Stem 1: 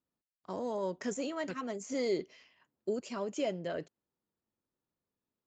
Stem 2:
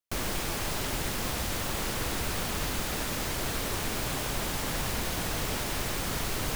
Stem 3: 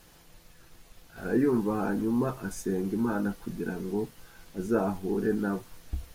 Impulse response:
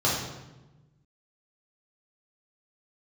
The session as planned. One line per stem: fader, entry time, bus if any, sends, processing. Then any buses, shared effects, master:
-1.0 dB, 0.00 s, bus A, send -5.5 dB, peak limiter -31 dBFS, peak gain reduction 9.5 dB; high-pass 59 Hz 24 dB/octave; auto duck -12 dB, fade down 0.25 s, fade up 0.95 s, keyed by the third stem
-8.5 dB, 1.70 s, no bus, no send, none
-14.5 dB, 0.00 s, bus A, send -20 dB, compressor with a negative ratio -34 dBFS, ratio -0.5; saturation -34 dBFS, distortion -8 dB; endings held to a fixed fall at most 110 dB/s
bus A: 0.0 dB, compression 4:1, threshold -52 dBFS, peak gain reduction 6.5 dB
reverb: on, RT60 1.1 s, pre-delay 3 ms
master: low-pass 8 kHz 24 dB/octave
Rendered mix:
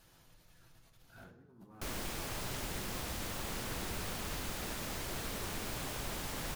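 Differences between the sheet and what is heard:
stem 1: muted; master: missing low-pass 8 kHz 24 dB/octave

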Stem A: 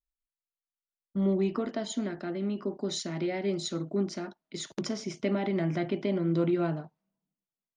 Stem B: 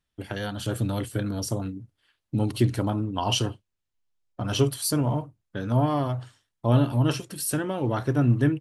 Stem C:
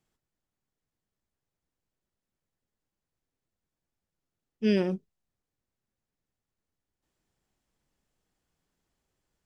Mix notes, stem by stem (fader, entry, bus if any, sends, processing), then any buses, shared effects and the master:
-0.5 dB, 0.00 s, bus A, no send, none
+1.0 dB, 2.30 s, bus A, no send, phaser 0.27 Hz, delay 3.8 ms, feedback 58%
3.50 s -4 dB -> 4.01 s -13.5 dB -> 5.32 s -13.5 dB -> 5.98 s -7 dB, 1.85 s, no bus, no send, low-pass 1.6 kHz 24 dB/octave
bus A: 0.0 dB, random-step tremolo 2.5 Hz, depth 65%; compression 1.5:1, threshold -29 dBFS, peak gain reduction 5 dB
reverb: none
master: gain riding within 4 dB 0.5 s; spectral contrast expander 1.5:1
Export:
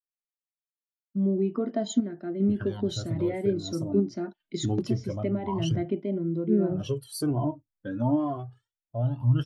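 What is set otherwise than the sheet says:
stem A -0.5 dB -> +8.5 dB; stem C -4.0 dB -> +4.5 dB

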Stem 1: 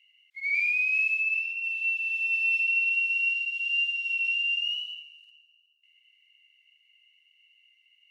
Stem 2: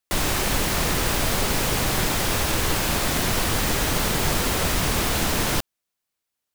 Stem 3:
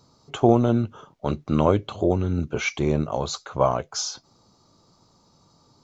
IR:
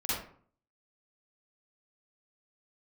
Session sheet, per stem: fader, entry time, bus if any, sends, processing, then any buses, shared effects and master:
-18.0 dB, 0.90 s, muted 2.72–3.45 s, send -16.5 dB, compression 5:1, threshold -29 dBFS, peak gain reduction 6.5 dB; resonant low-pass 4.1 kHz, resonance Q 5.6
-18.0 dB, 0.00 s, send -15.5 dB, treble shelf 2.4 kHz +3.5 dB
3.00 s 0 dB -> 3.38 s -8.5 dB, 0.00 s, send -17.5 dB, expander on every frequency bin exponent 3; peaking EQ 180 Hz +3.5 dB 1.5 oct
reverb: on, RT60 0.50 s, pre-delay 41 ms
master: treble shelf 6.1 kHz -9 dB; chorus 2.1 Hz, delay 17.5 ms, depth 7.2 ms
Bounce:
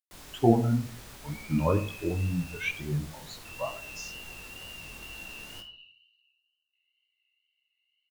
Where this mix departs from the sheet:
stem 2 -18.0 dB -> -24.5 dB; master: missing treble shelf 6.1 kHz -9 dB

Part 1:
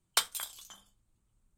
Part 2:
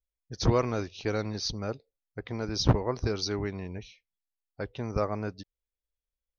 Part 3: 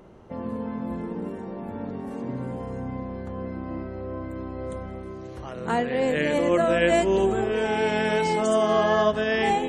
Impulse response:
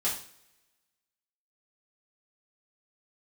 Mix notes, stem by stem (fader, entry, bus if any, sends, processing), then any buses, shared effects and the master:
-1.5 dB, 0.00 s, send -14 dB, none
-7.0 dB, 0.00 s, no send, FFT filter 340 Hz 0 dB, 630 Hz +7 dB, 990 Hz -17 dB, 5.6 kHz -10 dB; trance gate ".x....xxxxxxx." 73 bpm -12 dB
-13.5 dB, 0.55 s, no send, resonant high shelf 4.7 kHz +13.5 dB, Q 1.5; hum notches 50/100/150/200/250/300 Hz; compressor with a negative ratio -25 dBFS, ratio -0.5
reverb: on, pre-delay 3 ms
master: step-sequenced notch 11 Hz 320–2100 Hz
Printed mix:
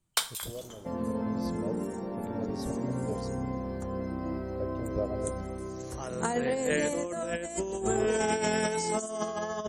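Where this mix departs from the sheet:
stem 3 -13.5 dB -> -3.5 dB; master: missing step-sequenced notch 11 Hz 320–2100 Hz

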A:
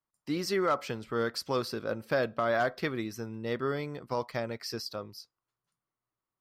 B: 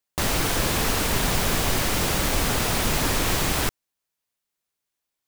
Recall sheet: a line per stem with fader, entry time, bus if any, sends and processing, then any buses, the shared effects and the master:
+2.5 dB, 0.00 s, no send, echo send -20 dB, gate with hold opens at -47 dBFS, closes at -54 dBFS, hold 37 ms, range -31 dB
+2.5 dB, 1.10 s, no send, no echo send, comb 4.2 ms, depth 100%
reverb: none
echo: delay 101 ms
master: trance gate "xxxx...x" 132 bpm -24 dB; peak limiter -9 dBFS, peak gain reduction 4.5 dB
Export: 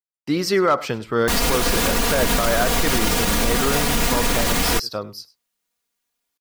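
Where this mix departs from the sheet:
stem A +2.5 dB -> +10.5 dB; master: missing trance gate "xxxx...x" 132 bpm -24 dB

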